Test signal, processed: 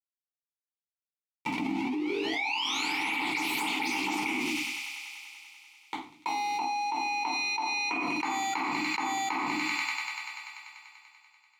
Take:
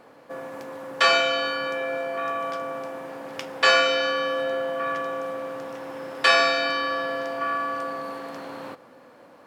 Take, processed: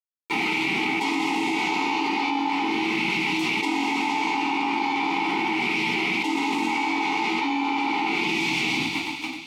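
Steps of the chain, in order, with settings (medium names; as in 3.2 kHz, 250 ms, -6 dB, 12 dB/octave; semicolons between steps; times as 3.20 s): median filter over 15 samples; high-pass 160 Hz 24 dB/octave; tilt shelf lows -8.5 dB, about 1.3 kHz; hum notches 50/100/150/200/250/300/350/400/450 Hz; spectral gate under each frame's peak -20 dB weak; treble shelf 6.7 kHz -9 dB; level rider gain up to 12 dB; word length cut 8-bit, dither none; vowel filter u; on a send: feedback echo behind a high-pass 97 ms, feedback 80%, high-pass 2.4 kHz, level -17.5 dB; on the sum: simulated room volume 350 m³, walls furnished, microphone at 4.5 m; level flattener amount 100%; trim +1.5 dB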